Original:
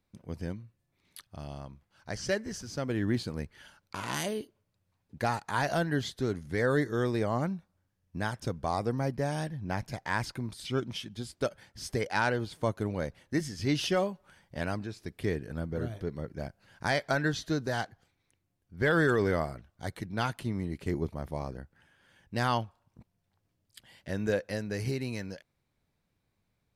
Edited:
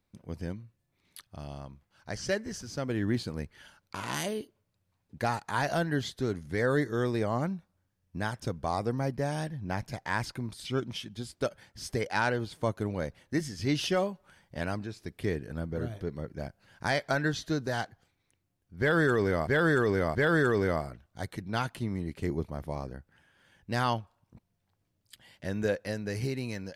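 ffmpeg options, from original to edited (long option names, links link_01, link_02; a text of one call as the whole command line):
ffmpeg -i in.wav -filter_complex "[0:a]asplit=3[link_01][link_02][link_03];[link_01]atrim=end=19.472[link_04];[link_02]atrim=start=18.788:end=19.472[link_05];[link_03]atrim=start=18.788[link_06];[link_04][link_05]acrossfade=duration=0.004:curve1=hsin:curve2=hsin[link_07];[link_07][link_06]acrossfade=duration=0.004:curve1=hsin:curve2=hsin" out.wav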